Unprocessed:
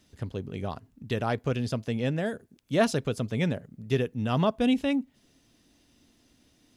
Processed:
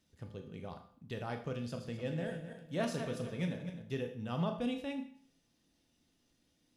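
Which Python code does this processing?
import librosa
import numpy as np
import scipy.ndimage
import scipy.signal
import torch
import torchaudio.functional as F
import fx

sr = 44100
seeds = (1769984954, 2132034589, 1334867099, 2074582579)

y = fx.reverse_delay_fb(x, sr, ms=129, feedback_pct=54, wet_db=-7.5, at=(1.63, 3.82))
y = fx.comb_fb(y, sr, f0_hz=170.0, decay_s=0.24, harmonics='odd', damping=0.0, mix_pct=70)
y = fx.rev_schroeder(y, sr, rt60_s=0.54, comb_ms=26, drr_db=6.0)
y = F.gain(torch.from_numpy(y), -3.5).numpy()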